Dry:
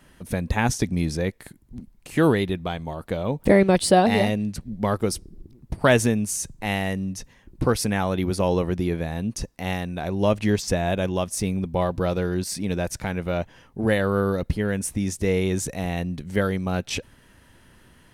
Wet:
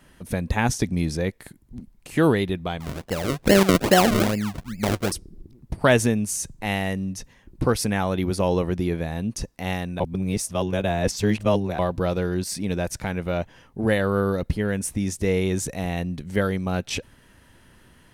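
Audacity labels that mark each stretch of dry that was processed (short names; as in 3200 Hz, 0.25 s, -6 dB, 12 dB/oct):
2.800000	5.120000	decimation with a swept rate 36× 2.4 Hz
10.000000	11.790000	reverse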